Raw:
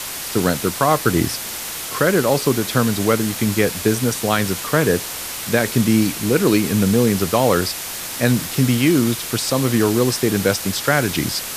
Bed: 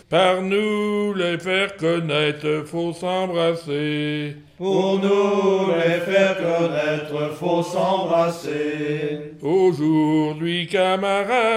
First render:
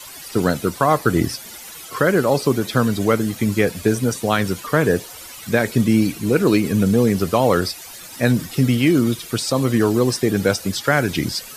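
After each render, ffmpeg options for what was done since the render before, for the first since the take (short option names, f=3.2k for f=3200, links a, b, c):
-af "afftdn=nr=14:nf=-29"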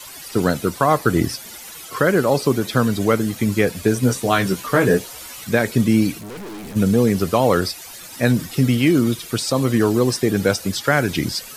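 -filter_complex "[0:a]asettb=1/sr,asplit=3[a][b][c];[a]atrim=end=4.014[d];[b]atrim=start=4.01:end=5.44,asetpts=PTS-STARTPTS,afade=t=in:d=0.004:c=qsin,afade=t=out:st=1.426:d=0.004:c=qsin,asplit=2[e][f];[f]adelay=16,volume=-4dB[g];[e][g]amix=inputs=2:normalize=0,atrim=end_sample=63063[h];[c]atrim=start=5.436[i];[d][h]acrossfade=d=0.004:c1=hsin:c2=qsin[j];[j][i]acrossfade=d=0.004:c1=qsin:c2=hsin,asplit=3[k][l][m];[k]afade=t=out:st=6.18:d=0.02[n];[l]aeval=exprs='(tanh(39.8*val(0)+0.25)-tanh(0.25))/39.8':c=same,afade=t=in:st=6.18:d=0.02,afade=t=out:st=6.75:d=0.02[o];[m]afade=t=in:st=6.75:d=0.02[p];[n][o][p]amix=inputs=3:normalize=0"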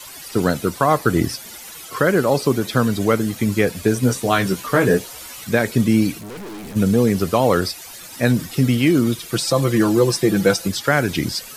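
-filter_complex "[0:a]asettb=1/sr,asplit=3[a][b][c];[a]atrim=end=9.324[d];[b]atrim=start=9.32:end=10.68,asetpts=PTS-STARTPTS,afade=t=in:d=0.004:c=qsin,afade=t=out:st=1.356:d=0.004:c=qsin,aecho=1:1:5.9:0.65,atrim=end_sample=59976[e];[c]atrim=start=10.676[f];[d][e]acrossfade=d=0.004:c1=hsin:c2=qsin[g];[g][f]acrossfade=d=0.004:c1=qsin:c2=hsin"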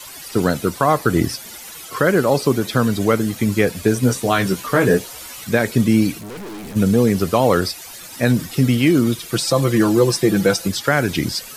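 -af "volume=1dB,alimiter=limit=-3dB:level=0:latency=1"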